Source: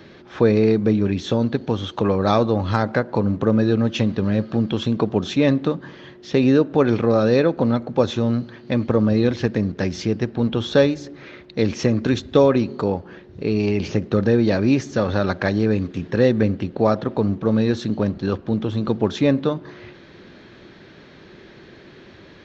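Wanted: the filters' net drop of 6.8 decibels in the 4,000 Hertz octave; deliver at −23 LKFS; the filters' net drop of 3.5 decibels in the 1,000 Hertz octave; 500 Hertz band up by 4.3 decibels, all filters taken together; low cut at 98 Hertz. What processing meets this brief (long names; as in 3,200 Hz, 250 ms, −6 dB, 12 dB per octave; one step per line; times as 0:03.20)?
high-pass filter 98 Hz
parametric band 500 Hz +6.5 dB
parametric band 1,000 Hz −7 dB
parametric band 4,000 Hz −8 dB
level −5 dB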